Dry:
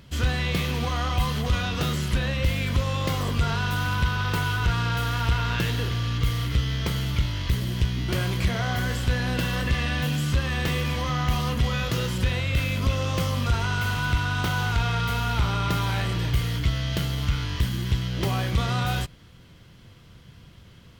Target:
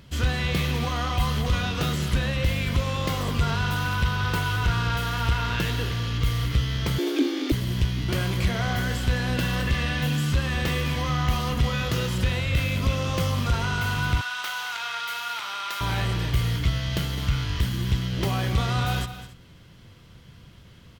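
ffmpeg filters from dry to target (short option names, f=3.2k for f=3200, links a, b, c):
-filter_complex "[0:a]aecho=1:1:209|278:0.224|0.119,asettb=1/sr,asplit=3[a][b][c];[a]atrim=end=6.984[d];[b]atrim=start=6.98:end=7.52,asetpts=PTS-STARTPTS,afade=t=in:d=0.004:c=qsin,afade=t=out:st=0.536:d=0.004:c=qsin,afreqshift=220[e];[c]atrim=start=7.516[f];[d][e]acrossfade=d=0.004:c1=hsin:c2=qsin[g];[g][f]acrossfade=d=0.004:c1=qsin:c2=hsin,asettb=1/sr,asplit=3[h][i][j];[h]atrim=end=14.214[k];[i]atrim=start=14.21:end=15.81,asetpts=PTS-STARTPTS,afade=t=in:d=0.004:c=qsin,afade=t=out:st=1.596:d=0.004:c=qsin,highpass=1.1k[l];[j]atrim=start=15.806[m];[k][l]acrossfade=d=0.004:c1=hsin:c2=qsin[n];[n][m]acrossfade=d=0.004:c1=qsin:c2=hsin"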